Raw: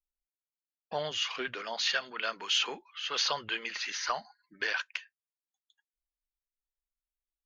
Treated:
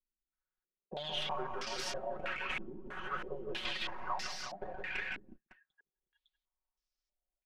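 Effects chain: tracing distortion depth 0.48 ms; compression 3:1, threshold -38 dBFS, peak gain reduction 10 dB; comb 5.4 ms, depth 94%; on a send: multi-tap echo 164/184/331/364/556 ms -5.5/-7/-10/-4/-13 dB; on the sum: step-sequenced low-pass 3.1 Hz 280–5400 Hz; trim -6 dB

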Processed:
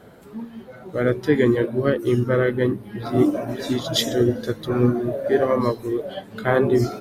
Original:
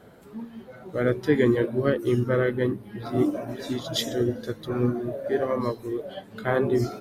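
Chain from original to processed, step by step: gain riding within 3 dB 2 s; trim +4.5 dB

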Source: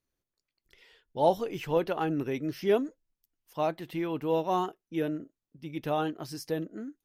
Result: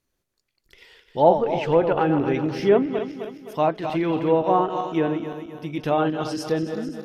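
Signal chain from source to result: backward echo that repeats 130 ms, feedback 67%, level -8 dB; low-pass that closes with the level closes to 1.9 kHz, closed at -23 dBFS; trim +8 dB

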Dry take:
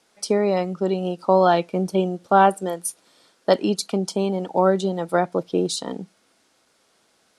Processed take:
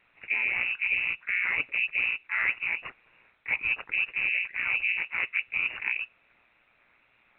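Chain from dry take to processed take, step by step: reverse; compression 12:1, threshold -24 dBFS, peak gain reduction 15 dB; reverse; ring modulator 60 Hz; in parallel at -8 dB: decimation with a swept rate 24×, swing 160% 2 Hz; on the sum: harmony voices +5 st -9 dB; frequency inversion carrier 2.8 kHz; A-law 64 kbps 8 kHz

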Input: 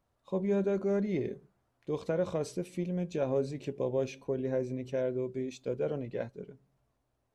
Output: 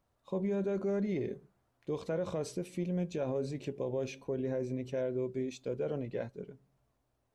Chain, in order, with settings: peak limiter -26 dBFS, peak gain reduction 5.5 dB

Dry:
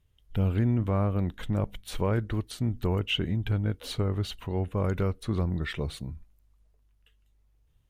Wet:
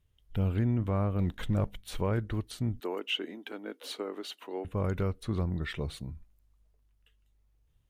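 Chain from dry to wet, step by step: 1.19–1.69 s: waveshaping leveller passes 1; 2.80–4.65 s: steep high-pass 270 Hz 36 dB/octave; trim -3 dB

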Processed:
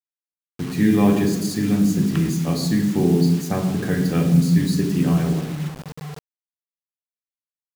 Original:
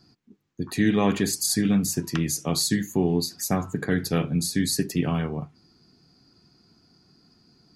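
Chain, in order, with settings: treble shelf 4.2 kHz -12 dB; on a send at -3 dB: reverberation RT60 1.2 s, pre-delay 3 ms; on the sum: bit crusher 6-bit

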